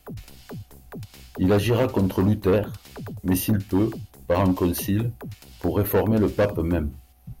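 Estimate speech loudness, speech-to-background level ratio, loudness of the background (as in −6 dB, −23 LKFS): −23.5 LKFS, 16.5 dB, −40.0 LKFS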